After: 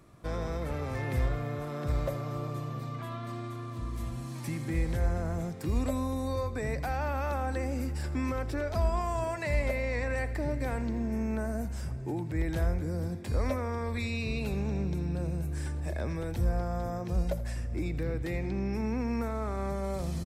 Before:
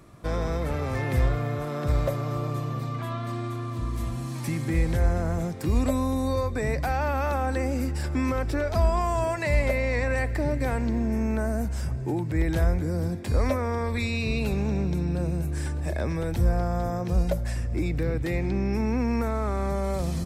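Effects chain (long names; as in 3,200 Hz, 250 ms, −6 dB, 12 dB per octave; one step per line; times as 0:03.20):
single-tap delay 82 ms −16 dB
level −6 dB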